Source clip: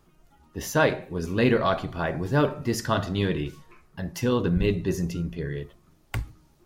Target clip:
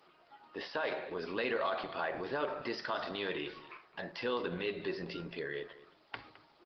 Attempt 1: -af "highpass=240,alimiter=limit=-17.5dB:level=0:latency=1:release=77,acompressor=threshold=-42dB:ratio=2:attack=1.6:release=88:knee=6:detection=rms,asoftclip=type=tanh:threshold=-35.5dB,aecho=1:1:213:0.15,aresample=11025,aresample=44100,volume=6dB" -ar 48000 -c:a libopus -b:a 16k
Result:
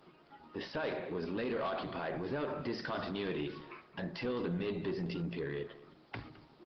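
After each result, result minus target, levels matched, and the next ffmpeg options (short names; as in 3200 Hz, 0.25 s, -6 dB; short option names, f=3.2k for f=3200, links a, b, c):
soft clip: distortion +13 dB; 250 Hz band +5.5 dB
-af "highpass=240,alimiter=limit=-17.5dB:level=0:latency=1:release=77,acompressor=threshold=-42dB:ratio=2:attack=1.6:release=88:knee=6:detection=rms,asoftclip=type=tanh:threshold=-26.5dB,aecho=1:1:213:0.15,aresample=11025,aresample=44100,volume=6dB" -ar 48000 -c:a libopus -b:a 16k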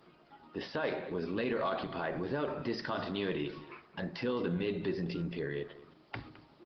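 250 Hz band +5.0 dB
-af "highpass=540,alimiter=limit=-17.5dB:level=0:latency=1:release=77,acompressor=threshold=-42dB:ratio=2:attack=1.6:release=88:knee=6:detection=rms,asoftclip=type=tanh:threshold=-26.5dB,aecho=1:1:213:0.15,aresample=11025,aresample=44100,volume=6dB" -ar 48000 -c:a libopus -b:a 16k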